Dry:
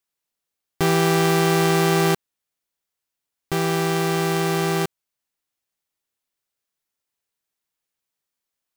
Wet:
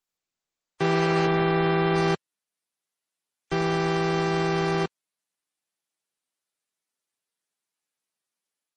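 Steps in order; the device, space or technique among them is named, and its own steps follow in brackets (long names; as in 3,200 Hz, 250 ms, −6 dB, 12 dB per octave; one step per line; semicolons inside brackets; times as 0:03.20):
0:01.24–0:01.96: dynamic equaliser 6,200 Hz, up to −4 dB, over −37 dBFS, Q 1
noise-suppressed video call (high-pass filter 140 Hz 24 dB per octave; gate on every frequency bin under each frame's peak −25 dB strong; automatic gain control gain up to 4.5 dB; level −6.5 dB; Opus 16 kbit/s 48,000 Hz)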